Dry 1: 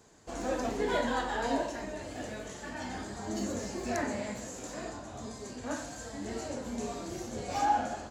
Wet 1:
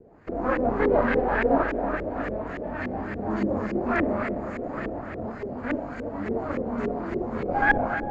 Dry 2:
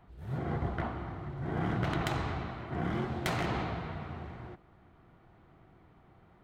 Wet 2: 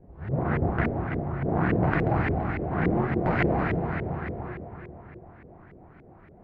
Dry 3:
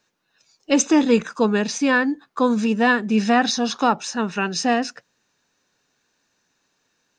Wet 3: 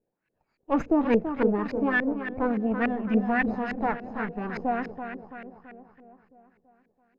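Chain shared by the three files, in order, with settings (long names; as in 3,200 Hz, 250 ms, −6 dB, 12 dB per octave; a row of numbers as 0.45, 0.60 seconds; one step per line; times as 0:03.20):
lower of the sound and its delayed copy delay 0.44 ms
on a send: feedback echo with a low-pass in the loop 333 ms, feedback 55%, low-pass 4,700 Hz, level −8.5 dB
on the sum: auto-filter low-pass saw up 3.5 Hz 400–2,100 Hz
mains-hum notches 60/120 Hz
loudness normalisation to −27 LKFS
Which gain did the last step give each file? +7.5, +8.0, −7.0 decibels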